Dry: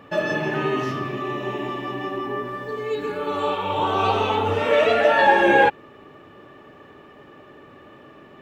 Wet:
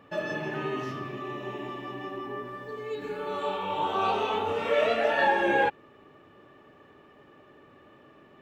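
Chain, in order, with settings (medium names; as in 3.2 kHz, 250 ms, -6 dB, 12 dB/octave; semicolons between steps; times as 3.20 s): 2.99–5.28 s: doubling 26 ms -3 dB; trim -8.5 dB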